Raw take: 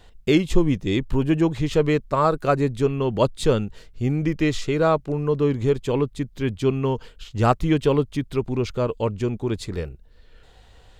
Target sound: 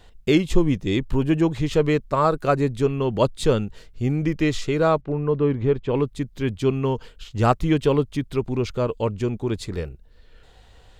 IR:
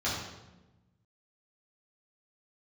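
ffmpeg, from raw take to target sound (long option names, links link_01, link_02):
-filter_complex "[0:a]asettb=1/sr,asplit=3[link_01][link_02][link_03];[link_01]atrim=end=5.014[link_04];[link_02]atrim=start=5.01:end=5.95,asetpts=PTS-STARTPTS,afade=type=in:duration=0.004:curve=qsin,afade=type=out:start_time=0.936:duration=0.004:curve=qsin,lowpass=2600[link_05];[link_03]atrim=start=5.946[link_06];[link_04][link_05]acrossfade=duration=0.004:curve1=hsin:curve2=qsin[link_07];[link_07][link_06]acrossfade=duration=0.004:curve1=qsin:curve2=hsin"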